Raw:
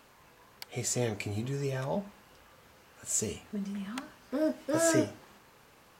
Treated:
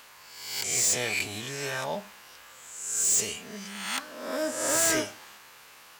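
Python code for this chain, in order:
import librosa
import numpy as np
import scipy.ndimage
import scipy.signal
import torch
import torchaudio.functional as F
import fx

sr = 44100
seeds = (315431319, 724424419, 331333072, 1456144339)

y = fx.spec_swells(x, sr, rise_s=0.9)
y = fx.tilt_shelf(y, sr, db=-9.5, hz=660.0)
y = np.clip(y, -10.0 ** (-21.0 / 20.0), 10.0 ** (-21.0 / 20.0))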